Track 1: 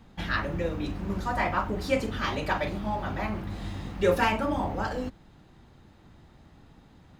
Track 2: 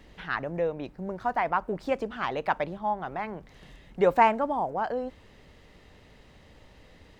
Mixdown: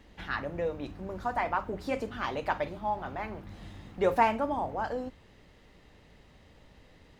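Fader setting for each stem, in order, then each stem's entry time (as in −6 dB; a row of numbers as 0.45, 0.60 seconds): −11.0, −4.0 decibels; 0.00, 0.00 seconds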